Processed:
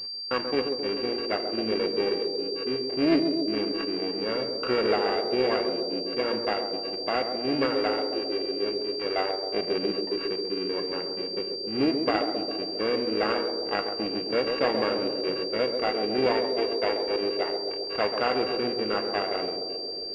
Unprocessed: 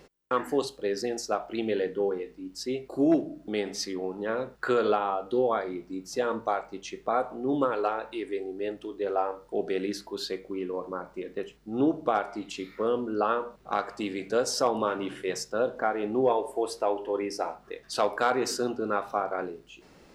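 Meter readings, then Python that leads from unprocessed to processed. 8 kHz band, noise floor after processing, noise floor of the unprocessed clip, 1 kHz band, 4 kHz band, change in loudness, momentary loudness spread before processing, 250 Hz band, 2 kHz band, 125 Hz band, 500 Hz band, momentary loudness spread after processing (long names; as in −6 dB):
below −20 dB, −34 dBFS, −56 dBFS, −1.5 dB, +12.0 dB, +2.5 dB, 9 LU, +2.0 dB, +3.5 dB, +1.5 dB, +2.0 dB, 5 LU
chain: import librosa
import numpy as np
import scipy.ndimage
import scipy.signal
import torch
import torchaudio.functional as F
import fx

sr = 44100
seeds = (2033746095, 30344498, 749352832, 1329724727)

y = np.r_[np.sort(x[:len(x) // 16 * 16].reshape(-1, 16), axis=1).ravel(), x[len(x) // 16 * 16:]]
y = fx.echo_banded(y, sr, ms=134, feedback_pct=83, hz=400.0, wet_db=-4.5)
y = fx.pwm(y, sr, carrier_hz=4700.0)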